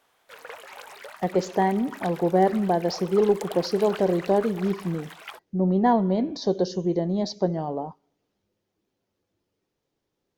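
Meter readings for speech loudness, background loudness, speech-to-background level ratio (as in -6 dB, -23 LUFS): -24.5 LUFS, -41.5 LUFS, 17.0 dB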